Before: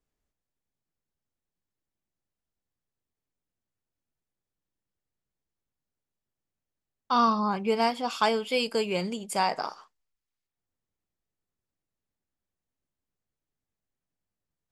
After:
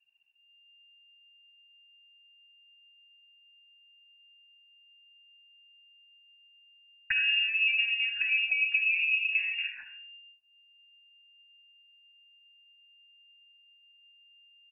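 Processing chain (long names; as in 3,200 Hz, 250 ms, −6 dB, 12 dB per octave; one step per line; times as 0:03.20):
treble cut that deepens with the level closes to 2,200 Hz, closed at −24 dBFS
leveller curve on the samples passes 2
low-shelf EQ 220 Hz +8.5 dB
notch filter 430 Hz, Q 12
downward compressor 12 to 1, threshold −24 dBFS, peak gain reduction 10.5 dB
low-shelf EQ 66 Hz +8.5 dB
treble cut that deepens with the level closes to 400 Hz, closed at −26 dBFS
convolution reverb RT60 0.50 s, pre-delay 25 ms, DRR 6 dB
flanger 0.22 Hz, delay 2.9 ms, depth 5.7 ms, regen −31%
voice inversion scrambler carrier 2,800 Hz
comb filter 1.2 ms, depth 80%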